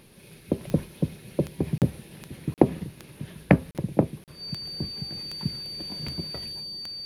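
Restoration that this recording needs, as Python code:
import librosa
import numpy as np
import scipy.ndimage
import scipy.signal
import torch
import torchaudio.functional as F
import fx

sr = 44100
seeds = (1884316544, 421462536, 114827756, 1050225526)

y = fx.fix_declick_ar(x, sr, threshold=10.0)
y = fx.notch(y, sr, hz=4600.0, q=30.0)
y = fx.fix_interpolate(y, sr, at_s=(1.78, 2.54, 3.71, 4.24), length_ms=38.0)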